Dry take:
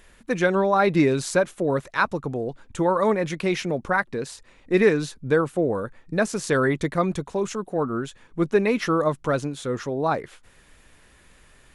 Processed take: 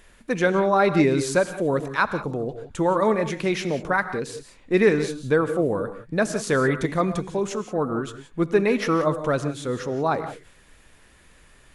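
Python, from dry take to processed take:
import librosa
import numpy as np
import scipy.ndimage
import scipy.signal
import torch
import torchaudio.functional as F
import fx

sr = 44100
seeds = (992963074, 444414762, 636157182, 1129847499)

y = fx.rev_gated(x, sr, seeds[0], gate_ms=200, shape='rising', drr_db=10.5)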